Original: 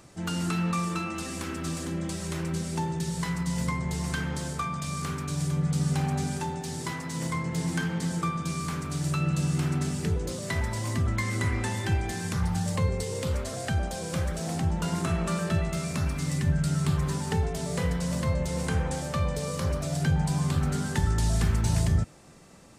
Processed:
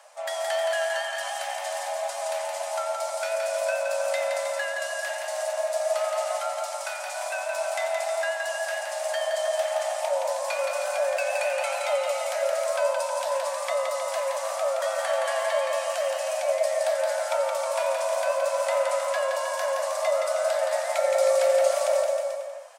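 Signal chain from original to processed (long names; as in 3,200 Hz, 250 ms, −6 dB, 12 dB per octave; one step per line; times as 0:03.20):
pitch vibrato 7 Hz 36 cents
frequency shifter +480 Hz
bouncing-ball delay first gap 170 ms, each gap 0.85×, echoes 5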